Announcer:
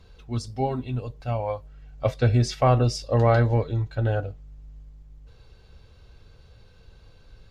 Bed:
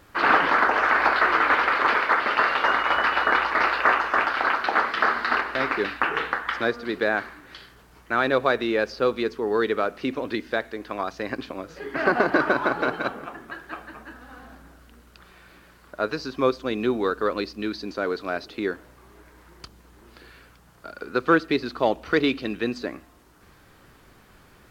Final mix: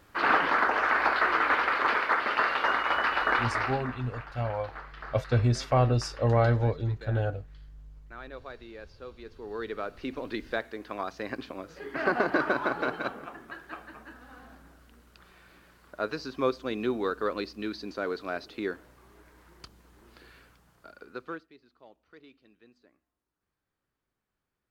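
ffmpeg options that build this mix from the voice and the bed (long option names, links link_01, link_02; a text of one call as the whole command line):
ffmpeg -i stem1.wav -i stem2.wav -filter_complex "[0:a]adelay=3100,volume=-4dB[link_01];[1:a]volume=11.5dB,afade=type=out:start_time=3.45:duration=0.42:silence=0.141254,afade=type=in:start_time=9.18:duration=1.32:silence=0.149624,afade=type=out:start_time=20.38:duration=1.11:silence=0.0446684[link_02];[link_01][link_02]amix=inputs=2:normalize=0" out.wav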